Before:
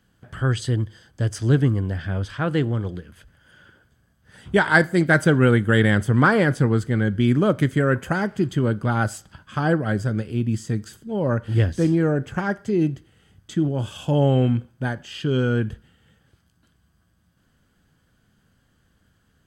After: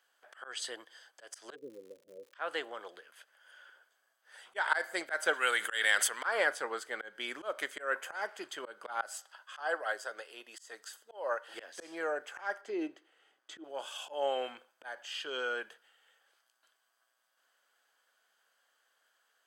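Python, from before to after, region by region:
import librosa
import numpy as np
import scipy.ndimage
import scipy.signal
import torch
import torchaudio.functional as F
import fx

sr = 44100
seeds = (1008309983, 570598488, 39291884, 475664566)

y = fx.steep_lowpass(x, sr, hz=540.0, slope=96, at=(1.54, 2.33), fade=0.02)
y = fx.low_shelf(y, sr, hz=130.0, db=8.5, at=(1.54, 2.33), fade=0.02)
y = fx.dmg_crackle(y, sr, seeds[0], per_s=160.0, level_db=-46.0, at=(1.54, 2.33), fade=0.02)
y = fx.chain(y, sr, fx.tilt_shelf(db=-8.0, hz=1500.0),
    fx.sustainer(db_per_s=25.0), at=(5.33, 6.25))
y = fx.chain(y, sr, fx.highpass(hz=390.0, slope=12),
    fx.notch(hz=2300.0, q=9.3), at=(9.13, 11.54))
y = fx.chain(y, sr, fx.lowpass(hz=2900.0, slope=6),
    fx.peak_eq(hz=310.0, db=11.0, octaves=0.67), at=(12.61, 13.64))
y = scipy.signal.sosfilt(scipy.signal.butter(4, 590.0, 'highpass', fs=sr, output='sos'), y)
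y = fx.auto_swell(y, sr, attack_ms=175.0)
y = y * 10.0 ** (-4.0 / 20.0)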